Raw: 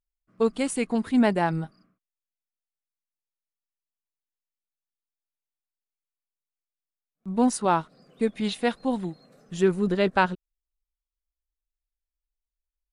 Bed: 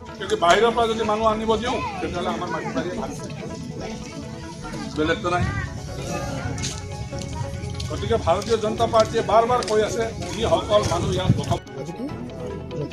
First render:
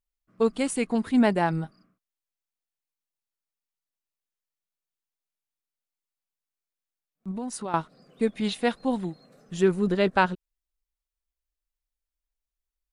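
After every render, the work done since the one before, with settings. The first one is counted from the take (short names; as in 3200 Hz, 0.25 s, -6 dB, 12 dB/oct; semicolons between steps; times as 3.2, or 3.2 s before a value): 7.31–7.74 compressor 4:1, threshold -31 dBFS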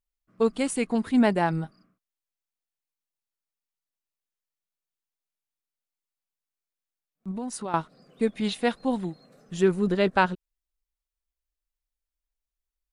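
nothing audible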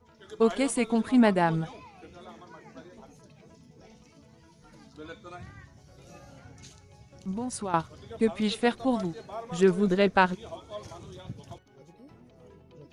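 add bed -22 dB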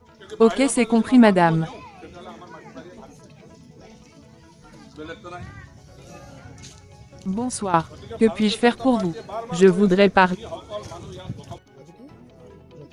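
gain +7.5 dB; limiter -2 dBFS, peak gain reduction 2.5 dB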